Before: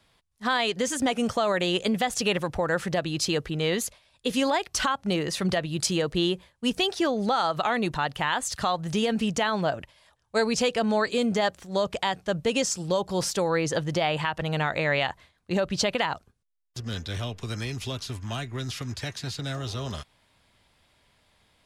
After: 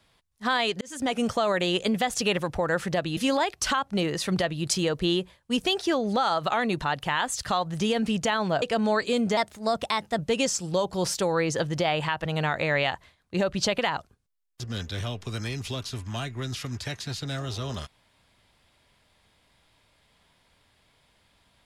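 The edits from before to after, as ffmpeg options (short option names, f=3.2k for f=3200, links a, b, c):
-filter_complex "[0:a]asplit=6[a][b][c][d][e][f];[a]atrim=end=0.81,asetpts=PTS-STARTPTS,afade=t=out:st=0.806:d=0.004:c=hsin[g];[b]atrim=start=0.81:end=3.172,asetpts=PTS-STARTPTS,afade=t=in:d=0.34[h];[c]atrim=start=4.298:end=9.752[i];[d]atrim=start=10.668:end=11.424[j];[e]atrim=start=11.42:end=12.35,asetpts=PTS-STARTPTS,asetrate=50274,aresample=44100,atrim=end_sample=35976,asetpts=PTS-STARTPTS[k];[f]atrim=start=12.346[l];[g][h]concat=n=2:v=0:a=1[m];[m][i]acrossfade=d=0.004:c1=hsin:c2=hsin[n];[n][j]acrossfade=d=0.004:c1=hsin:c2=hsin[o];[o][k]acrossfade=d=0.004:c1=hsin:c2=hsin[p];[p][l]acrossfade=d=0.004:c1=hsin:c2=hsin"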